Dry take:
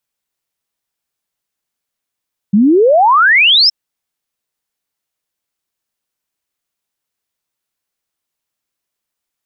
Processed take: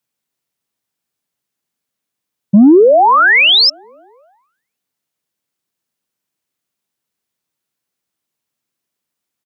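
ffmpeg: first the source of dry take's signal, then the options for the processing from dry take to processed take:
-f lavfi -i "aevalsrc='0.531*clip(min(t,1.17-t)/0.01,0,1)*sin(2*PI*190*1.17/log(5500/190)*(exp(log(5500/190)*t/1.17)-1))':d=1.17:s=44100"
-filter_complex "[0:a]highpass=120,acrossover=split=340|680[a][b][c];[a]acontrast=76[d];[b]aecho=1:1:260|520|780|1040|1300:0.224|0.119|0.0629|0.0333|0.0177[e];[d][e][c]amix=inputs=3:normalize=0"

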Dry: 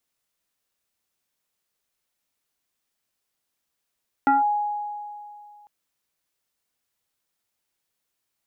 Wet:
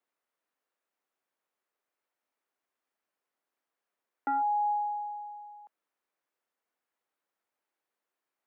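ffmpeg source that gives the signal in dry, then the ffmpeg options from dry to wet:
-f lavfi -i "aevalsrc='0.2*pow(10,-3*t/2.43)*sin(2*PI*831*t+1*clip(1-t/0.16,0,1)*sin(2*PI*0.67*831*t))':d=1.4:s=44100"
-filter_complex "[0:a]alimiter=level_in=0.5dB:limit=-24dB:level=0:latency=1,volume=-0.5dB,acrossover=split=250 2100:gain=0.0631 1 0.178[a][b][c];[a][b][c]amix=inputs=3:normalize=0"

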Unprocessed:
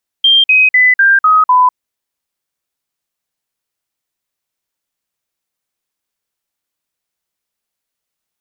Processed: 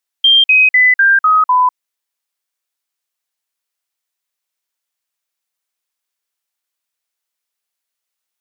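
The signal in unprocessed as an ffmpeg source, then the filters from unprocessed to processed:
-f lavfi -i "aevalsrc='0.562*clip(min(mod(t,0.25),0.2-mod(t,0.25))/0.005,0,1)*sin(2*PI*3180*pow(2,-floor(t/0.25)/3)*mod(t,0.25))':d=1.5:s=44100"
-af "highpass=f=890:p=1"

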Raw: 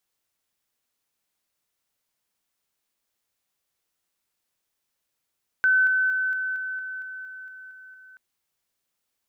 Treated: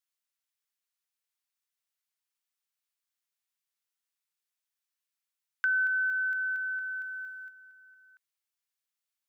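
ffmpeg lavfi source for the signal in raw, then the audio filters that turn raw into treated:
-f lavfi -i "aevalsrc='pow(10,(-16-3*floor(t/0.23))/20)*sin(2*PI*1520*t)':d=2.53:s=44100"
-af "agate=range=-9dB:threshold=-41dB:ratio=16:detection=peak,highpass=1.2k,acompressor=threshold=-30dB:ratio=2"

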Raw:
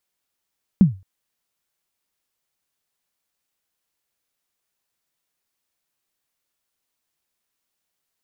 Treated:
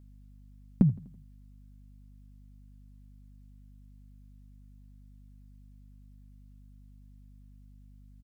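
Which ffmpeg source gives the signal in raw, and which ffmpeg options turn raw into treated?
-f lavfi -i "aevalsrc='0.596*pow(10,-3*t/0.29)*sin(2*PI*(210*0.133/log(95/210)*(exp(log(95/210)*min(t,0.133)/0.133)-1)+95*max(t-0.133,0)))':d=0.22:s=44100"
-af "flanger=delay=3.1:depth=4.6:regen=28:speed=1.8:shape=sinusoidal,aeval=exprs='val(0)+0.00251*(sin(2*PI*50*n/s)+sin(2*PI*2*50*n/s)/2+sin(2*PI*3*50*n/s)/3+sin(2*PI*4*50*n/s)/4+sin(2*PI*5*50*n/s)/5)':c=same,aecho=1:1:83|166|249|332:0.0794|0.0453|0.0258|0.0147"

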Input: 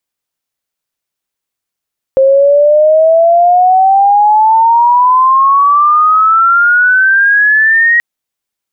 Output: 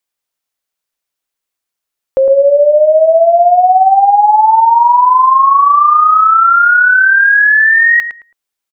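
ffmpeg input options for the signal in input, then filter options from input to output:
-f lavfi -i "aevalsrc='pow(10,(-3.5-1.5*t/5.83)/20)*sin(2*PI*530*5.83/log(1900/530)*(exp(log(1900/530)*t/5.83)-1))':d=5.83:s=44100"
-filter_complex "[0:a]equalizer=f=120:t=o:w=2.8:g=-7.5,asplit=2[a][b];[b]adelay=109,lowpass=f=1.3k:p=1,volume=-7dB,asplit=2[c][d];[d]adelay=109,lowpass=f=1.3k:p=1,volume=0.27,asplit=2[e][f];[f]adelay=109,lowpass=f=1.3k:p=1,volume=0.27[g];[a][c][e][g]amix=inputs=4:normalize=0"

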